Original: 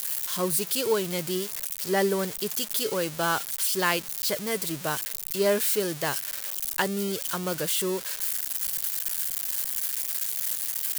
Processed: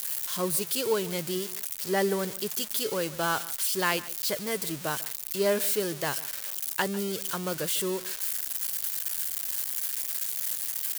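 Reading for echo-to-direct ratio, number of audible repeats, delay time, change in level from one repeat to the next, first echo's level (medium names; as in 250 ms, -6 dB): -18.5 dB, 1, 148 ms, no regular repeats, -18.5 dB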